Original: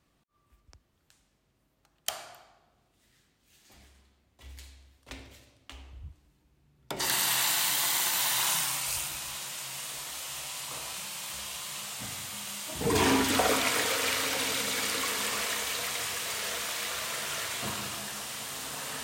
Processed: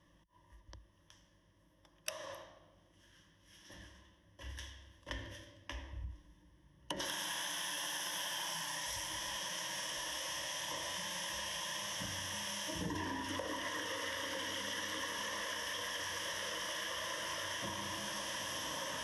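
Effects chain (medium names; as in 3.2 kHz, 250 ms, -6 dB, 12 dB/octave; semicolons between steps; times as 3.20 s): treble shelf 6.7 kHz -7.5 dB; formant shift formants -3 st; rippled EQ curve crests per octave 1.2, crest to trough 14 dB; compression 10:1, threshold -39 dBFS, peak gain reduction 20.5 dB; trim +1.5 dB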